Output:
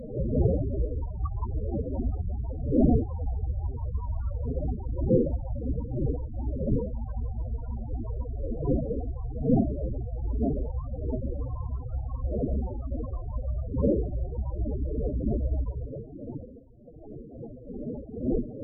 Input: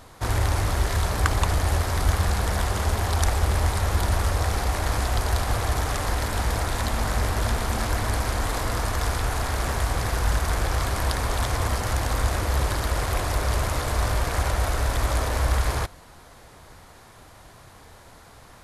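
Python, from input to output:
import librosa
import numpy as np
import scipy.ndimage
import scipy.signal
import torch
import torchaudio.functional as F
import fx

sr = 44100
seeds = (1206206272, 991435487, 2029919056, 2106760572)

y = fx.dmg_wind(x, sr, seeds[0], corner_hz=580.0, level_db=-20.0)
y = fx.spec_topn(y, sr, count=8)
y = fx.ripple_eq(y, sr, per_octave=1.0, db=6)
y = y * librosa.db_to_amplitude(-7.5)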